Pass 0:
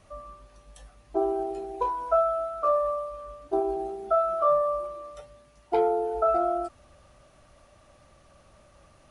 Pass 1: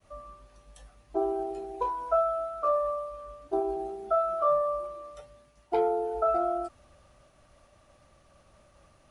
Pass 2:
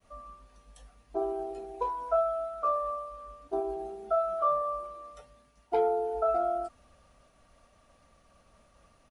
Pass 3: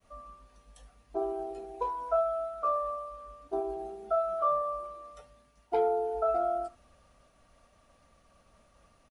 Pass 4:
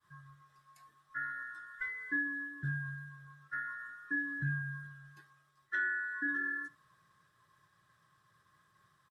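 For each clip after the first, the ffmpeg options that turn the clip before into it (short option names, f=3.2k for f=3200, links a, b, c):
-af "agate=range=-33dB:threshold=-55dB:ratio=3:detection=peak,volume=-2.5dB"
-af "aecho=1:1:4.3:0.37,volume=-2.5dB"
-af "aecho=1:1:73:0.0891,volume=-1dB"
-af "afftfilt=real='real(if(lt(b,960),b+48*(1-2*mod(floor(b/48),2)),b),0)':imag='imag(if(lt(b,960),b+48*(1-2*mod(floor(b/48),2)),b),0)':win_size=2048:overlap=0.75,volume=-7dB"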